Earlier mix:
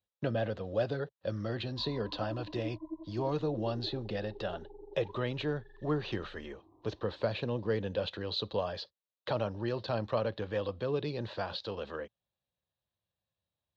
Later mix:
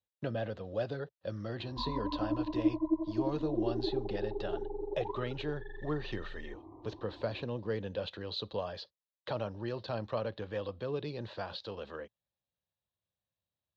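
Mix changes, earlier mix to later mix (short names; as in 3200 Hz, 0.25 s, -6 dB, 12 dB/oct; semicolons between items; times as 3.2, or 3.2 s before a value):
speech -3.5 dB; background +11.5 dB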